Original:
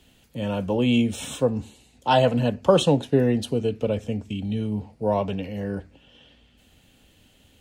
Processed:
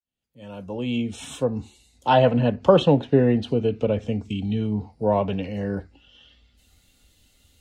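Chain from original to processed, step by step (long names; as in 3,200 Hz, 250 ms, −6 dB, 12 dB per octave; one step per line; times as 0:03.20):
fade in at the beginning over 2.25 s
noise reduction from a noise print of the clip's start 10 dB
treble cut that deepens with the level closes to 2,900 Hz, closed at −19.5 dBFS
level +2 dB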